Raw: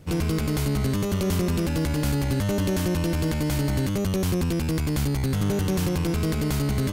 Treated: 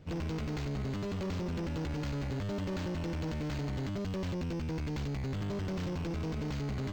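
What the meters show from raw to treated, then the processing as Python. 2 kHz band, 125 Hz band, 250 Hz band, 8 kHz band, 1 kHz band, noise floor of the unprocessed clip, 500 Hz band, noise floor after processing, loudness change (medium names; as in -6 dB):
-10.5 dB, -11.0 dB, -11.0 dB, -19.5 dB, -9.5 dB, -26 dBFS, -10.5 dB, -36 dBFS, -11.0 dB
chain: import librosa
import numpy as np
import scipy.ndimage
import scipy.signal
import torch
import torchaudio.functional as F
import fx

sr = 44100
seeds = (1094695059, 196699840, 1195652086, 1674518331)

y = 10.0 ** (-26.0 / 20.0) * np.tanh(x / 10.0 ** (-26.0 / 20.0))
y = np.interp(np.arange(len(y)), np.arange(len(y))[::4], y[::4])
y = y * librosa.db_to_amplitude(-6.0)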